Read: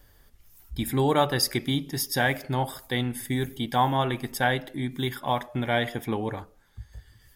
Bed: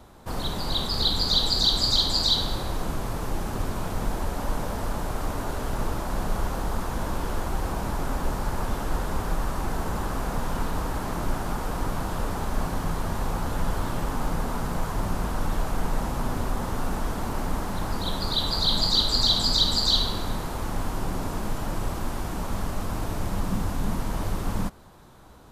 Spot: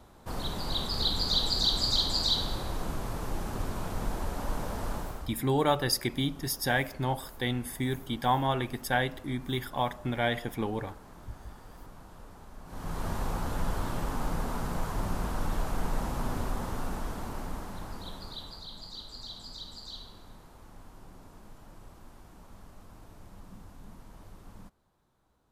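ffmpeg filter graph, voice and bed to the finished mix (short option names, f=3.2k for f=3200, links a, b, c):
-filter_complex "[0:a]adelay=4500,volume=-3.5dB[a];[1:a]volume=11.5dB,afade=t=out:st=4.94:d=0.38:silence=0.158489,afade=t=in:st=12.65:d=0.42:silence=0.149624,afade=t=out:st=16.36:d=2.32:silence=0.133352[b];[a][b]amix=inputs=2:normalize=0"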